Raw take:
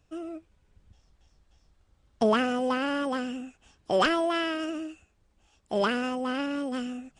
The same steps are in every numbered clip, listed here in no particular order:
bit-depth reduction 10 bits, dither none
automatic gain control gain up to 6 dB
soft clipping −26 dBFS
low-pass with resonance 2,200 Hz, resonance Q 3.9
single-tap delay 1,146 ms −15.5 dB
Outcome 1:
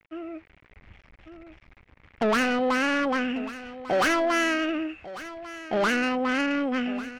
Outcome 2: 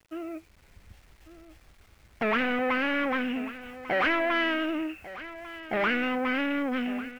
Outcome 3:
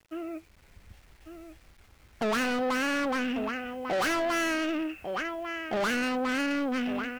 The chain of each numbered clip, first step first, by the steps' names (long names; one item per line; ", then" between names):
bit-depth reduction, then low-pass with resonance, then soft clipping, then single-tap delay, then automatic gain control
automatic gain control, then soft clipping, then low-pass with resonance, then bit-depth reduction, then single-tap delay
single-tap delay, then automatic gain control, then low-pass with resonance, then soft clipping, then bit-depth reduction